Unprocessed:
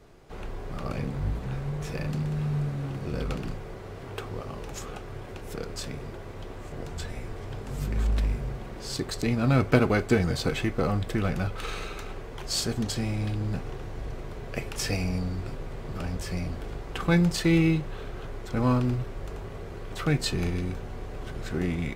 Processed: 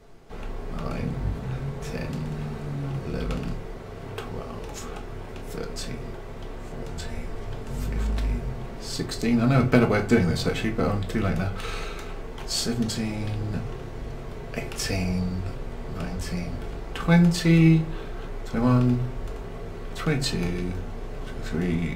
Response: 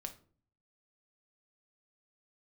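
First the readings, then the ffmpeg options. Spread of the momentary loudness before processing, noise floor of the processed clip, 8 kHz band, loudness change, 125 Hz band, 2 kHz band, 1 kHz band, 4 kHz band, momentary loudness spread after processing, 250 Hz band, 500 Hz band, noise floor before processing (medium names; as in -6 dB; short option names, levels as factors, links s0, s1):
16 LU, -37 dBFS, +1.5 dB, +3.0 dB, +2.5 dB, +2.0 dB, +2.0 dB, +1.5 dB, 17 LU, +3.5 dB, +2.0 dB, -40 dBFS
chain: -filter_complex "[1:a]atrim=start_sample=2205,asetrate=52920,aresample=44100[s0];[0:a][s0]afir=irnorm=-1:irlink=0,volume=2.11"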